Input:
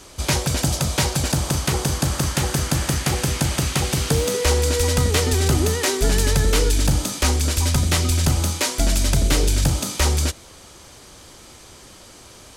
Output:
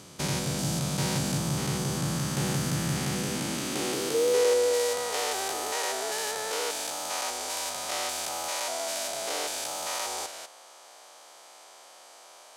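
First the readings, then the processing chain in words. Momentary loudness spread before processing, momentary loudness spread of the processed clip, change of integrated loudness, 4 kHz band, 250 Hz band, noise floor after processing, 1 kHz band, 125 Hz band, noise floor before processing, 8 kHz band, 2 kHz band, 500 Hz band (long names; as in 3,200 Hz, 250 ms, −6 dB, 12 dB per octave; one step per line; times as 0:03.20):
3 LU, 6 LU, −8.5 dB, −7.5 dB, −8.0 dB, −51 dBFS, −4.5 dB, −13.0 dB, −45 dBFS, −7.5 dB, −7.5 dB, −3.5 dB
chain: spectrum averaged block by block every 200 ms
high-pass filter sweep 160 Hz → 700 Hz, 0:02.98–0:05.10
level −5.5 dB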